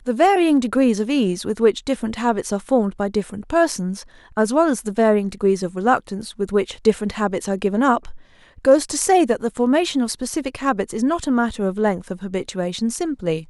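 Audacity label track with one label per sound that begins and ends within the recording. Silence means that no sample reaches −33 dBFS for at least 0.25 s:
4.370000	8.160000	sound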